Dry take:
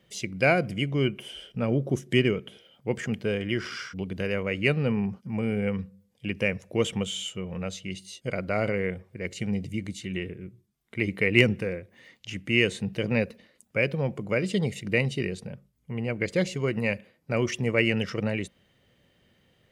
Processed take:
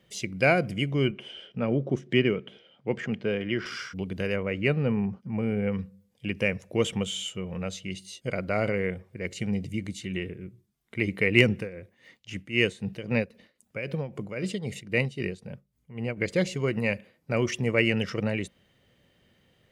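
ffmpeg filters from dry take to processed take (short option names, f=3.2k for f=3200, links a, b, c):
-filter_complex "[0:a]asettb=1/sr,asplit=3[a][b][c];[a]atrim=end=1.114[d];[b]atrim=start=1.11:end=3.66,asetpts=PTS-STARTPTS,afade=t=in:d=0.004:c=qsin,afade=t=out:st=2.546:d=0.004:c=qsin,highpass=120,lowpass=3.8k[e];[c]atrim=start=3.656[f];[d][e]acrossfade=d=0.004:c1=hsin:c2=qsin[g];[g][f]acrossfade=d=0.004:c1=qsin:c2=hsin,asettb=1/sr,asplit=3[h][i][j];[h]atrim=end=4.364[k];[i]atrim=start=4.36:end=5.72,asetpts=PTS-STARTPTS,afade=t=in:d=0.004:c=qsin,afade=t=out:st=1.356:d=0.004:c=qsin,highshelf=f=3.5k:g=-11[l];[j]atrim=start=5.716[m];[k][l]acrossfade=d=0.004:c1=hsin:c2=qsin[n];[n][m]acrossfade=d=0.004:c1=qsin:c2=hsin,asplit=3[o][p][q];[o]afade=t=out:st=11.56:d=0.02[r];[p]tremolo=f=3.8:d=0.73,afade=t=in:st=11.56:d=0.02,afade=t=out:st=16.16:d=0.02[s];[q]afade=t=in:st=16.16:d=0.02[t];[r][s][t]amix=inputs=3:normalize=0"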